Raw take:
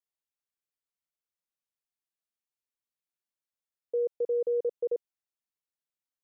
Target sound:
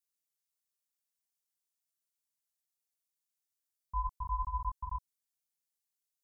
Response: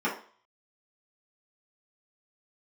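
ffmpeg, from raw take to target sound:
-af "bass=f=250:g=-6,treble=f=4k:g=13,flanger=delay=19.5:depth=3.7:speed=2.9,aeval=exprs='val(0)*sin(2*PI*530*n/s)':c=same"

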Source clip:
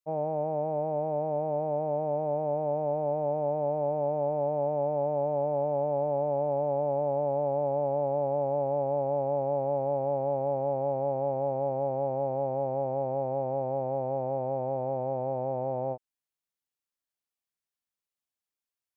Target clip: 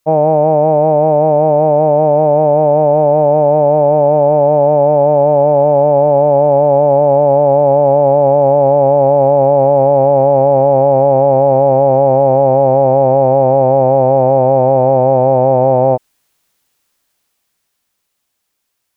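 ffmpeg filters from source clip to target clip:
-af "dynaudnorm=f=130:g=31:m=7dB,alimiter=level_in=22.5dB:limit=-1dB:release=50:level=0:latency=1,volume=-1dB"

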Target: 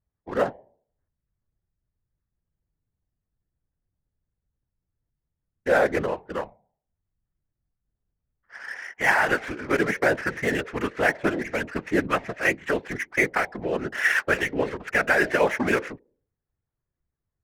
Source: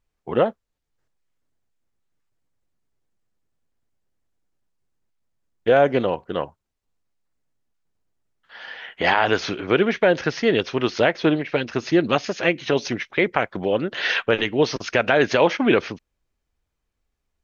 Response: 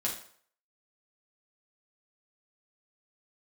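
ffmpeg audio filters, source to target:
-af "lowpass=f=1.9k:t=q:w=2.8,bandreject=f=149.9:t=h:w=4,bandreject=f=299.8:t=h:w=4,bandreject=f=449.7:t=h:w=4,bandreject=f=599.6:t=h:w=4,bandreject=f=749.5:t=h:w=4,bandreject=f=899.4:t=h:w=4,adynamicsmooth=sensitivity=4.5:basefreq=1.1k,afftfilt=real='hypot(re,im)*cos(2*PI*random(0))':imag='hypot(re,im)*sin(2*PI*random(1))':win_size=512:overlap=0.75"

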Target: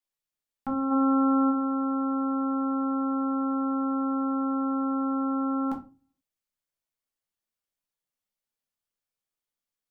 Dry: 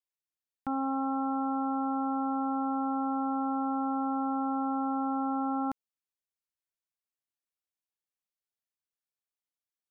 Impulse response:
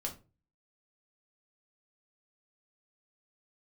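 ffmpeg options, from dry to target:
-filter_complex "[0:a]asplit=3[a][b][c];[a]afade=t=out:st=0.9:d=0.02[d];[b]acontrast=30,afade=t=in:st=0.9:d=0.02,afade=t=out:st=1.49:d=0.02[e];[c]afade=t=in:st=1.49:d=0.02[f];[d][e][f]amix=inputs=3:normalize=0[g];[1:a]atrim=start_sample=2205[h];[g][h]afir=irnorm=-1:irlink=0,volume=3dB"

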